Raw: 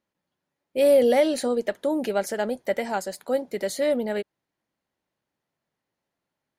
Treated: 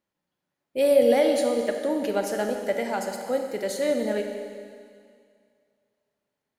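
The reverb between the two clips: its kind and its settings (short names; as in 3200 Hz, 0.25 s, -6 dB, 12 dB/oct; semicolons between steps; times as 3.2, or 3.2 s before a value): Schroeder reverb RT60 2.2 s, combs from 30 ms, DRR 4 dB; gain -2 dB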